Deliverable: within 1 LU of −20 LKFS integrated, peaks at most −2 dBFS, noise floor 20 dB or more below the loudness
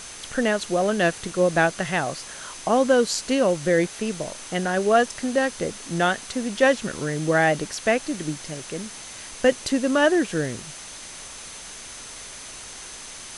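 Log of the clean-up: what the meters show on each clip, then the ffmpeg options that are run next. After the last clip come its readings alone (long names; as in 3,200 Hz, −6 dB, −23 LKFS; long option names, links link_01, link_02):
interfering tone 6,200 Hz; level of the tone −44 dBFS; background noise floor −40 dBFS; target noise floor −43 dBFS; integrated loudness −23.0 LKFS; sample peak −6.0 dBFS; target loudness −20.0 LKFS
→ -af "bandreject=frequency=6200:width=30"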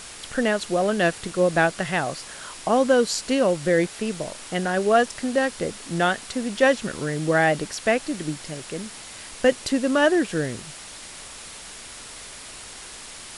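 interfering tone none found; background noise floor −40 dBFS; target noise floor −43 dBFS
→ -af "afftdn=noise_reduction=6:noise_floor=-40"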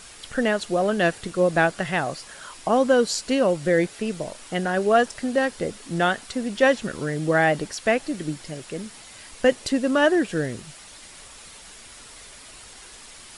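background noise floor −45 dBFS; integrated loudness −23.0 LKFS; sample peak −6.0 dBFS; target loudness −20.0 LKFS
→ -af "volume=3dB"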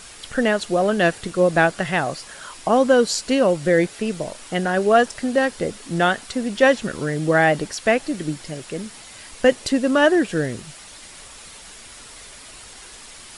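integrated loudness −20.0 LKFS; sample peak −3.0 dBFS; background noise floor −42 dBFS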